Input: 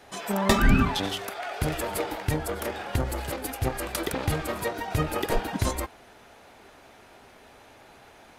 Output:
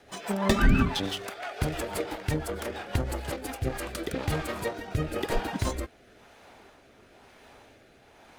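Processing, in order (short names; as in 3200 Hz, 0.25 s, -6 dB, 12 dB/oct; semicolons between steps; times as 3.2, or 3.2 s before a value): median filter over 3 samples; rotary speaker horn 6 Hz, later 1 Hz, at 3.16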